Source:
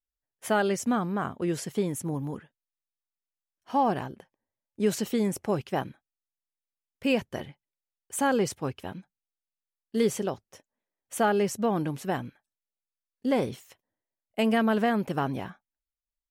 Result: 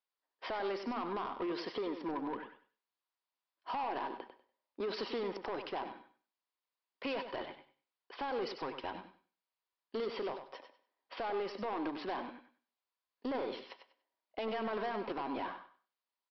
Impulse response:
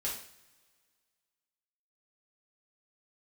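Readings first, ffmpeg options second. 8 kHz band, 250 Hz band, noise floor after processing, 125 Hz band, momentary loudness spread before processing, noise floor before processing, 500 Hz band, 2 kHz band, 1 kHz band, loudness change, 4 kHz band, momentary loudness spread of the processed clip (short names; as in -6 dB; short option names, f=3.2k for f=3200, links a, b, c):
under -30 dB, -14.0 dB, under -85 dBFS, -22.5 dB, 16 LU, under -85 dBFS, -9.5 dB, -10.0 dB, -8.0 dB, -11.0 dB, -6.5 dB, 15 LU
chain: -filter_complex "[0:a]highpass=f=290:w=0.5412,highpass=f=290:w=1.3066,equalizer=f=950:w=3.2:g=12,bandreject=f=890:w=12,alimiter=limit=-22dB:level=0:latency=1,acompressor=threshold=-36dB:ratio=2.5,aresample=11025,asoftclip=type=tanh:threshold=-36dB,aresample=44100,aecho=1:1:97|194|291:0.355|0.071|0.0142,asplit=2[a][b];[1:a]atrim=start_sample=2205,afade=t=out:st=0.19:d=0.01,atrim=end_sample=8820,adelay=69[c];[b][c]afir=irnorm=-1:irlink=0,volume=-20.5dB[d];[a][d]amix=inputs=2:normalize=0,volume=3.5dB"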